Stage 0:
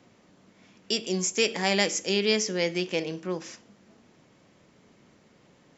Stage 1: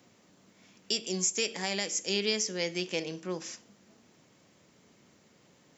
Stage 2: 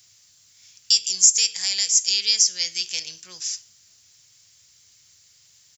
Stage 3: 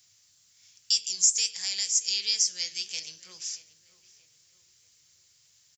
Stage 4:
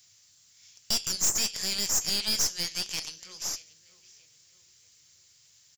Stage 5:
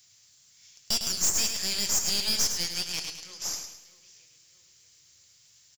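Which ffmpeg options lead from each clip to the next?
-af "highpass=59,aemphasis=mode=production:type=50kf,alimiter=limit=0.237:level=0:latency=1:release=466,volume=0.631"
-af "firequalizer=gain_entry='entry(100,0);entry(200,-24);entry(1500,-5);entry(4800,13)':delay=0.05:min_phase=1,volume=1.26"
-filter_complex "[0:a]flanger=delay=3.8:depth=6.6:regen=-73:speed=2:shape=triangular,asplit=2[s0][s1];[s1]adelay=630,lowpass=f=2200:p=1,volume=0.158,asplit=2[s2][s3];[s3]adelay=630,lowpass=f=2200:p=1,volume=0.48,asplit=2[s4][s5];[s5]adelay=630,lowpass=f=2200:p=1,volume=0.48,asplit=2[s6][s7];[s7]adelay=630,lowpass=f=2200:p=1,volume=0.48[s8];[s0][s2][s4][s6][s8]amix=inputs=5:normalize=0,volume=0.75"
-af "aeval=exprs='(tanh(25.1*val(0)+0.65)-tanh(0.65))/25.1':c=same,volume=2"
-af "aecho=1:1:105|210|315|420|525:0.447|0.179|0.0715|0.0286|0.0114"

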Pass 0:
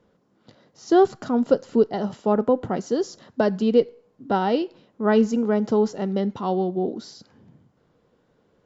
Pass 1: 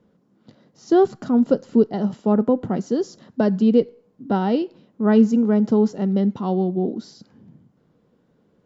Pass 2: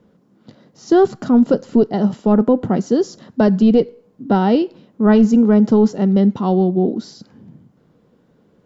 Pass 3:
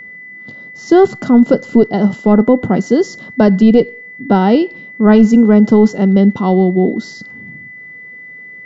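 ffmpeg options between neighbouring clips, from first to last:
-af "equalizer=f=200:t=o:w=1.6:g=9,volume=0.708"
-af "apsyclip=3.98,volume=0.501"
-af "aeval=exprs='val(0)+0.0178*sin(2*PI*2000*n/s)':c=same,volume=1.58"

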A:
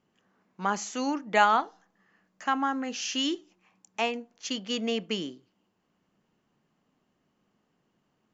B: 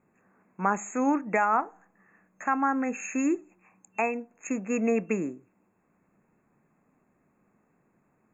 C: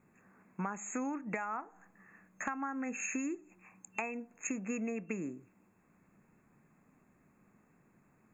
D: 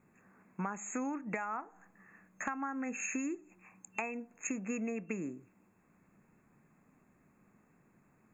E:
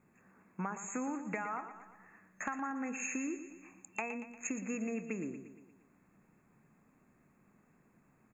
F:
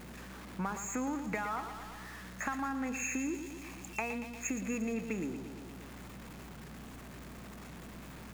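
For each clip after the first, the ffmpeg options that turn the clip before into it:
-af "alimiter=limit=0.133:level=0:latency=1:release=415,highshelf=f=5600:g=-4.5,afftfilt=real='re*(1-between(b*sr/4096,2700,6400))':imag='im*(1-between(b*sr/4096,2700,6400))':win_size=4096:overlap=0.75,volume=1.78"
-af "equalizer=f=580:w=0.56:g=-6,acompressor=threshold=0.0126:ratio=12,volume=1.58"
-af anull
-af "aecho=1:1:117|234|351|468|585|702:0.282|0.152|0.0822|0.0444|0.024|0.0129,volume=0.891"
-af "aeval=exprs='val(0)+0.5*0.00562*sgn(val(0))':c=same,aeval=exprs='val(0)+0.00224*(sin(2*PI*60*n/s)+sin(2*PI*2*60*n/s)/2+sin(2*PI*3*60*n/s)/3+sin(2*PI*4*60*n/s)/4+sin(2*PI*5*60*n/s)/5)':c=same,volume=1.12"

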